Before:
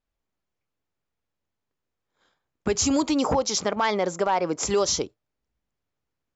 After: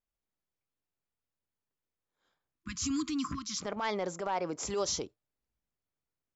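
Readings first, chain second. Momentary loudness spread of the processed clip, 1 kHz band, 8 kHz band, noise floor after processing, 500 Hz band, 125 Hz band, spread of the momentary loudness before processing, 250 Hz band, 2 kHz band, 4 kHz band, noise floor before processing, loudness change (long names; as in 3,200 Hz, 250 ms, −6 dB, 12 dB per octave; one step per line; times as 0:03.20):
6 LU, −11.0 dB, can't be measured, below −85 dBFS, −11.5 dB, −9.5 dB, 5 LU, −9.5 dB, −10.0 dB, −9.5 dB, −83 dBFS, −10.5 dB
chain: time-frequency box erased 0:02.60–0:03.62, 330–1,000 Hz
transient designer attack −7 dB, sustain +1 dB
level −8.5 dB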